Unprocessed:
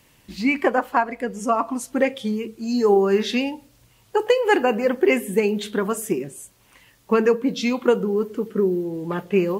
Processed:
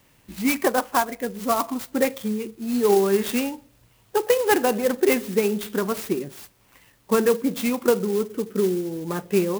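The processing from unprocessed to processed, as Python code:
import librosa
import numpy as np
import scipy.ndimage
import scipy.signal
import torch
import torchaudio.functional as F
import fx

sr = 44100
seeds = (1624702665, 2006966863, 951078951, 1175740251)

y = fx.clock_jitter(x, sr, seeds[0], jitter_ms=0.052)
y = y * librosa.db_to_amplitude(-1.5)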